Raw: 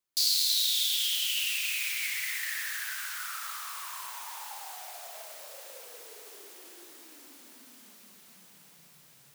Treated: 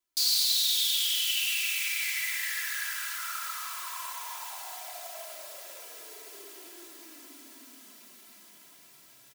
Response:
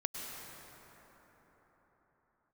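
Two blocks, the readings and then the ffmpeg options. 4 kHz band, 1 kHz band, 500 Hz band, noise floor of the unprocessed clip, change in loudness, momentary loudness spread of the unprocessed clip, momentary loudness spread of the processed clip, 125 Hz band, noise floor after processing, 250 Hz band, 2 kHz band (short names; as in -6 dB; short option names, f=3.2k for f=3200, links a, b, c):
+1.0 dB, +2.5 dB, +2.5 dB, -58 dBFS, +1.0 dB, 23 LU, 22 LU, n/a, -56 dBFS, +3.5 dB, +1.5 dB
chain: -filter_complex "[0:a]aecho=1:1:3:0.79,asoftclip=type=tanh:threshold=-16.5dB[a];[1:a]atrim=start_sample=2205,atrim=end_sample=6174,asetrate=48510,aresample=44100[b];[a][b]afir=irnorm=-1:irlink=0,volume=1.5dB"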